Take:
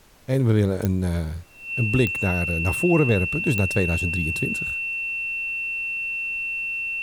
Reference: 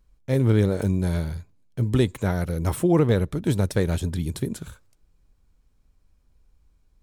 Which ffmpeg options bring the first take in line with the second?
-af "adeclick=t=4,bandreject=f=2.7k:w=30,agate=range=-21dB:threshold=-21dB"

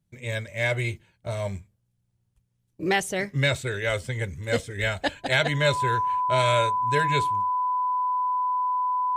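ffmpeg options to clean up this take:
-af "bandreject=f=1k:w=30"

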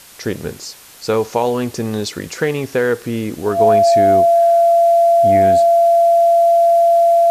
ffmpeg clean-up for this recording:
-af "bandreject=f=680:w=30,agate=range=-21dB:threshold=-28dB"

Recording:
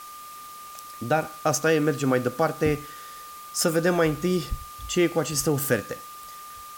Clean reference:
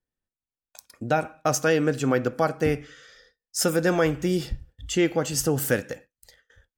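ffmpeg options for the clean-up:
-af "bandreject=f=1.2k:w=30,afwtdn=0.005"

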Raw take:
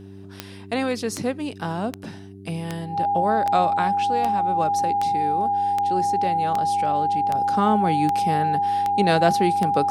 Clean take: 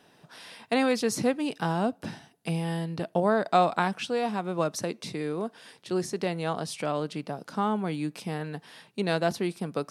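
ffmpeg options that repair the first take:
-af "adeclick=t=4,bandreject=f=97.5:t=h:w=4,bandreject=f=195:t=h:w=4,bandreject=f=292.5:t=h:w=4,bandreject=f=390:t=h:w=4,bandreject=f=810:w=30,asetnsamples=n=441:p=0,asendcmd='7.35 volume volume -7dB',volume=0dB"

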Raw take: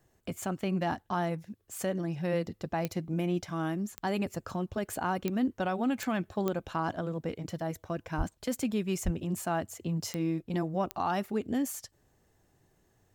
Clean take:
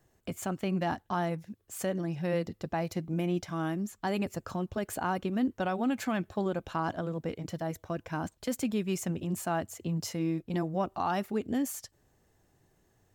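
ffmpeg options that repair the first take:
-filter_complex "[0:a]adeclick=t=4,asplit=3[a][b][c];[a]afade=t=out:st=8.17:d=0.02[d];[b]highpass=f=140:w=0.5412,highpass=f=140:w=1.3066,afade=t=in:st=8.17:d=0.02,afade=t=out:st=8.29:d=0.02[e];[c]afade=t=in:st=8.29:d=0.02[f];[d][e][f]amix=inputs=3:normalize=0,asplit=3[g][h][i];[g]afade=t=out:st=9.04:d=0.02[j];[h]highpass=f=140:w=0.5412,highpass=f=140:w=1.3066,afade=t=in:st=9.04:d=0.02,afade=t=out:st=9.16:d=0.02[k];[i]afade=t=in:st=9.16:d=0.02[l];[j][k][l]amix=inputs=3:normalize=0"

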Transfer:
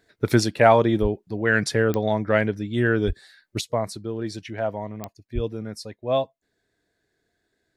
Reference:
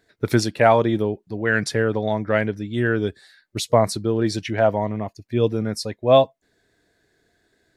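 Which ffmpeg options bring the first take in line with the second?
-filter_complex "[0:a]adeclick=t=4,asplit=3[a][b][c];[a]afade=t=out:st=1.01:d=0.02[d];[b]highpass=f=140:w=0.5412,highpass=f=140:w=1.3066,afade=t=in:st=1.01:d=0.02,afade=t=out:st=1.13:d=0.02[e];[c]afade=t=in:st=1.13:d=0.02[f];[d][e][f]amix=inputs=3:normalize=0,asplit=3[g][h][i];[g]afade=t=out:st=3.06:d=0.02[j];[h]highpass=f=140:w=0.5412,highpass=f=140:w=1.3066,afade=t=in:st=3.06:d=0.02,afade=t=out:st=3.18:d=0.02[k];[i]afade=t=in:st=3.18:d=0.02[l];[j][k][l]amix=inputs=3:normalize=0,asplit=3[m][n][o];[m]afade=t=out:st=5.34:d=0.02[p];[n]highpass=f=140:w=0.5412,highpass=f=140:w=1.3066,afade=t=in:st=5.34:d=0.02,afade=t=out:st=5.46:d=0.02[q];[o]afade=t=in:st=5.46:d=0.02[r];[p][q][r]amix=inputs=3:normalize=0,asetnsamples=n=441:p=0,asendcmd='3.61 volume volume 8.5dB',volume=0dB"

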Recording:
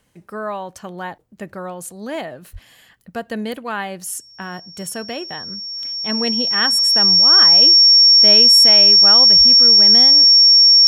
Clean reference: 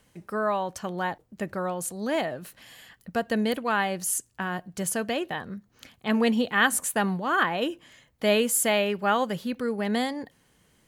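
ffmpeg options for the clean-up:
-filter_complex "[0:a]bandreject=f=5.5k:w=30,asplit=3[a][b][c];[a]afade=t=out:st=2.52:d=0.02[d];[b]highpass=f=140:w=0.5412,highpass=f=140:w=1.3066,afade=t=in:st=2.52:d=0.02,afade=t=out:st=2.64:d=0.02[e];[c]afade=t=in:st=2.64:d=0.02[f];[d][e][f]amix=inputs=3:normalize=0,asplit=3[g][h][i];[g]afade=t=out:st=9.37:d=0.02[j];[h]highpass=f=140:w=0.5412,highpass=f=140:w=1.3066,afade=t=in:st=9.37:d=0.02,afade=t=out:st=9.49:d=0.02[k];[i]afade=t=in:st=9.49:d=0.02[l];[j][k][l]amix=inputs=3:normalize=0"

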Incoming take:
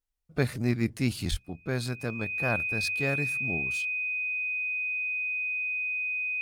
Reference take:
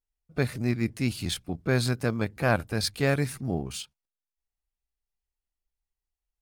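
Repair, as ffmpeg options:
-filter_complex "[0:a]bandreject=f=2.5k:w=30,asplit=3[a][b][c];[a]afade=t=out:st=1.3:d=0.02[d];[b]highpass=f=140:w=0.5412,highpass=f=140:w=1.3066,afade=t=in:st=1.3:d=0.02,afade=t=out:st=1.42:d=0.02[e];[c]afade=t=in:st=1.42:d=0.02[f];[d][e][f]amix=inputs=3:normalize=0,asetnsamples=n=441:p=0,asendcmd='1.31 volume volume 6dB',volume=0dB"

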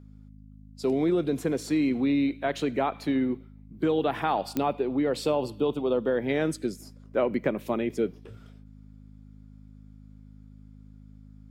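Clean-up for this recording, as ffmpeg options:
-af "adeclick=t=4,bandreject=f=52:t=h:w=4,bandreject=f=104:t=h:w=4,bandreject=f=156:t=h:w=4,bandreject=f=208:t=h:w=4,bandreject=f=260:t=h:w=4"

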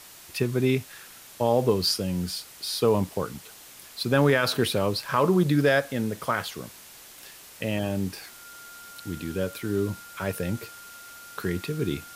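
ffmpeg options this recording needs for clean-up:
-af "bandreject=f=1.4k:w=30,afwtdn=0.005"

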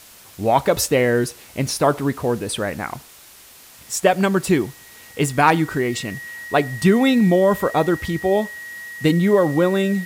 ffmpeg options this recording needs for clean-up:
-af "bandreject=f=1.9k:w=30,afftdn=nr=19:nf=-45"

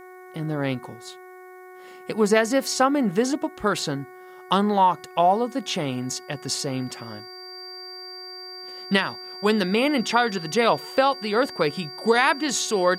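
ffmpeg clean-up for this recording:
-af "bandreject=f=368:t=h:w=4,bandreject=f=736:t=h:w=4,bandreject=f=1.104k:t=h:w=4,bandreject=f=1.472k:t=h:w=4,bandreject=f=1.84k:t=h:w=4,bandreject=f=2.208k:t=h:w=4,bandreject=f=4.7k:w=30,agate=range=-21dB:threshold=-36dB"

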